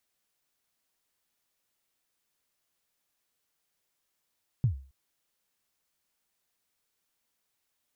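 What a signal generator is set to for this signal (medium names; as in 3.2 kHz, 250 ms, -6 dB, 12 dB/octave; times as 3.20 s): kick drum length 0.27 s, from 140 Hz, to 67 Hz, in 107 ms, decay 0.39 s, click off, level -18 dB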